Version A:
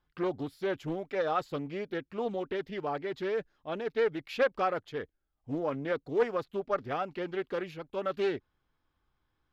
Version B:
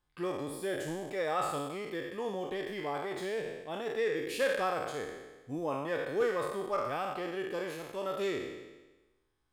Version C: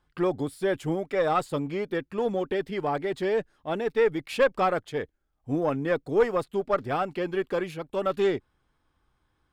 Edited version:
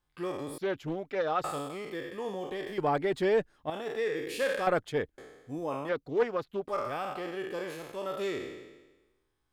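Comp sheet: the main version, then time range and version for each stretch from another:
B
0.58–1.44 s: from A
2.78–3.70 s: from C
4.67–5.18 s: from C
5.89–6.68 s: from A

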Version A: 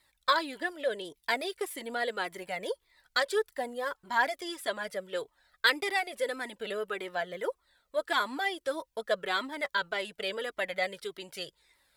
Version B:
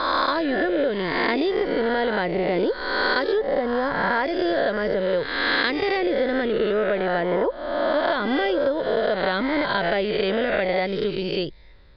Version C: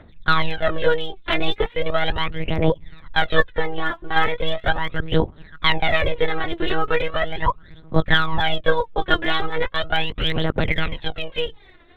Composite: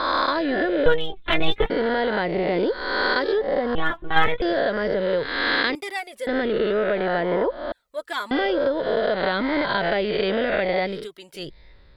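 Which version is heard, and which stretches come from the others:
B
0.86–1.70 s: from C
3.75–4.42 s: from C
5.75–6.27 s: from A
7.72–8.31 s: from A
10.97–11.45 s: from A, crossfade 0.24 s

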